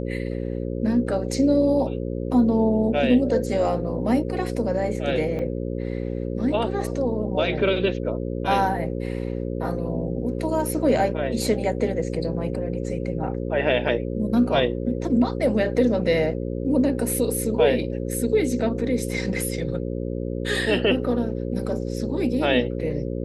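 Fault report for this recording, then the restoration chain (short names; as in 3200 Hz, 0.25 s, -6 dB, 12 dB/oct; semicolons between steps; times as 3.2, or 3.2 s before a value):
buzz 60 Hz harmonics 9 -28 dBFS
5.39 gap 4.2 ms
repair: de-hum 60 Hz, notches 9; interpolate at 5.39, 4.2 ms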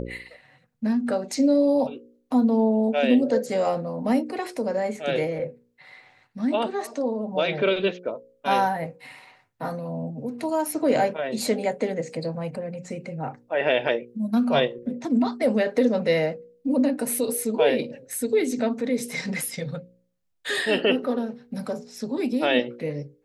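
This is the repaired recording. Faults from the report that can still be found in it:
none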